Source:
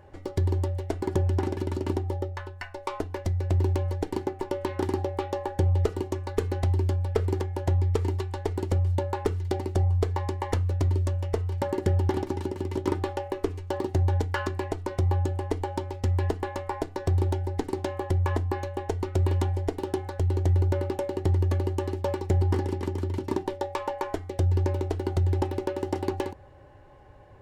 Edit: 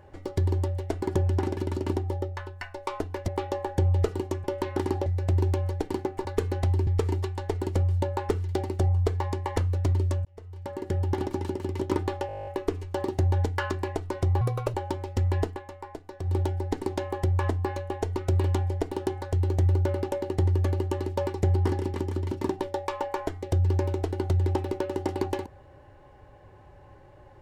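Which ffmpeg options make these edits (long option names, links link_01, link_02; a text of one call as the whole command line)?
ffmpeg -i in.wav -filter_complex "[0:a]asplit=21[link_01][link_02][link_03][link_04][link_05][link_06][link_07][link_08][link_09][link_10][link_11][link_12][link_13][link_14][link_15][link_16][link_17][link_18][link_19][link_20][link_21];[link_01]atrim=end=3.282[link_22];[link_02]atrim=start=5.088:end=6.252[link_23];[link_03]atrim=start=4.468:end=5.092[link_24];[link_04]atrim=start=3.278:end=4.472[link_25];[link_05]atrim=start=6.248:end=6.872[link_26];[link_06]atrim=start=7.828:end=11.21,asetpts=PTS-STARTPTS,afade=type=out:start_time=3.378:duration=0.004:curve=hsin[link_27];[link_07]atrim=start=11.21:end=13.252,asetpts=PTS-STARTPTS,afade=type=in:duration=1.11[link_28];[link_08]atrim=start=13.228:end=13.252[link_29];[link_09]atrim=start=13.228:end=13.252[link_30];[link_10]atrim=start=13.228:end=13.252[link_31];[link_11]atrim=start=13.228:end=13.252[link_32];[link_12]atrim=start=13.228:end=13.252[link_33];[link_13]atrim=start=13.228:end=13.252[link_34];[link_14]atrim=start=13.228:end=13.252[link_35];[link_15]atrim=start=13.228:end=13.252[link_36];[link_16]atrim=start=13.228:end=13.252[link_37];[link_17]atrim=start=13.228:end=15.174[link_38];[link_18]atrim=start=15.17:end=15.61,asetpts=PTS-STARTPTS,asetrate=58653,aresample=44100,atrim=end_sample=14589,asetpts=PTS-STARTPTS[link_39];[link_19]atrim=start=15.606:end=16.47,asetpts=PTS-STARTPTS,afade=type=out:start_time=0.724:duration=0.14:silence=0.334965[link_40];[link_20]atrim=start=16.47:end=17.1,asetpts=PTS-STARTPTS,volume=-9.5dB[link_41];[link_21]atrim=start=17.1,asetpts=PTS-STARTPTS,afade=type=in:duration=0.14:silence=0.334965[link_42];[link_22][link_23]acrossfade=duration=0.004:curve1=hsin:curve2=hsin[link_43];[link_43][link_24]acrossfade=duration=0.004:curve1=hsin:curve2=hsin[link_44];[link_44][link_25]acrossfade=duration=0.004:curve1=hsin:curve2=hsin[link_45];[link_45][link_26]acrossfade=duration=0.004:curve1=hsin:curve2=hsin[link_46];[link_27][link_28]concat=n=2:v=0:a=1[link_47];[link_46][link_47]acrossfade=duration=0.004:curve1=hsin:curve2=hsin[link_48];[link_48][link_29]acrossfade=duration=0.004:curve1=hsin:curve2=hsin[link_49];[link_49][link_30]acrossfade=duration=0.004:curve1=hsin:curve2=hsin[link_50];[link_50][link_31]acrossfade=duration=0.004:curve1=hsin:curve2=hsin[link_51];[link_51][link_32]acrossfade=duration=0.004:curve1=hsin:curve2=hsin[link_52];[link_52][link_33]acrossfade=duration=0.004:curve1=hsin:curve2=hsin[link_53];[link_53][link_34]acrossfade=duration=0.004:curve1=hsin:curve2=hsin[link_54];[link_54][link_35]acrossfade=duration=0.004:curve1=hsin:curve2=hsin[link_55];[link_55][link_36]acrossfade=duration=0.004:curve1=hsin:curve2=hsin[link_56];[link_56][link_37]acrossfade=duration=0.004:curve1=hsin:curve2=hsin[link_57];[link_57][link_38]acrossfade=duration=0.004:curve1=hsin:curve2=hsin[link_58];[link_58][link_39]acrossfade=duration=0.004:curve1=hsin:curve2=hsin[link_59];[link_40][link_41][link_42]concat=n=3:v=0:a=1[link_60];[link_59][link_60]acrossfade=duration=0.004:curve1=hsin:curve2=hsin" out.wav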